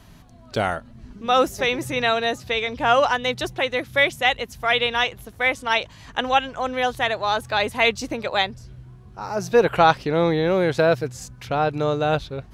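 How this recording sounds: noise floor -46 dBFS; spectral tilt -2.5 dB/octave

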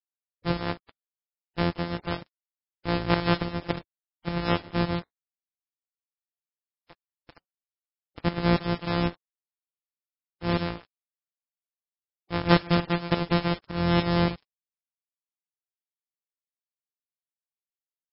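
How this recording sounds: a buzz of ramps at a fixed pitch in blocks of 256 samples; tremolo saw up 3.5 Hz, depth 70%; a quantiser's noise floor 8-bit, dither none; MP3

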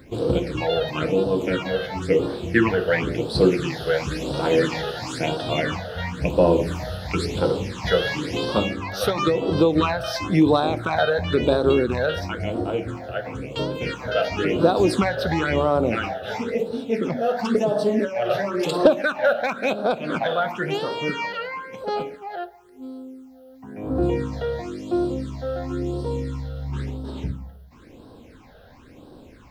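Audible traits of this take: a quantiser's noise floor 12-bit, dither none; phasing stages 8, 0.97 Hz, lowest notch 290–2200 Hz; AAC

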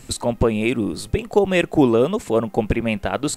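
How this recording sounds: noise floor -45 dBFS; spectral tilt -5.5 dB/octave

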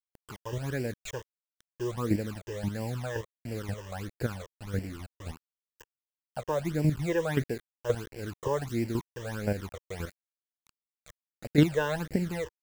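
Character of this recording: chopped level 1.9 Hz, depth 65%, duty 10%; a quantiser's noise floor 8-bit, dither none; phasing stages 12, 1.5 Hz, lowest notch 220–1200 Hz

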